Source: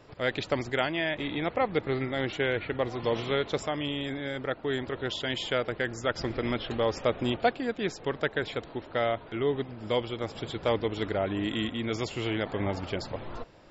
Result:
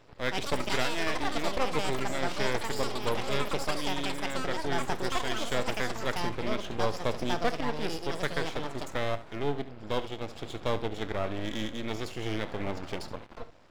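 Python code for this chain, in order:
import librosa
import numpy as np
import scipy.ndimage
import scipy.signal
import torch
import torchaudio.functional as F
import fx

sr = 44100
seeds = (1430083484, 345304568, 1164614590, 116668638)

y = np.maximum(x, 0.0)
y = fx.room_early_taps(y, sr, ms=(28, 71), db=(-16.5, -14.5))
y = fx.echo_pitch(y, sr, ms=185, semitones=7, count=2, db_per_echo=-3.0)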